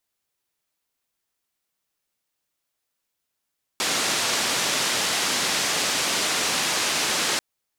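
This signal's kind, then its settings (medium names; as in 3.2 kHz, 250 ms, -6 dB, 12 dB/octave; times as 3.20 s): noise band 170–6600 Hz, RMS -24 dBFS 3.59 s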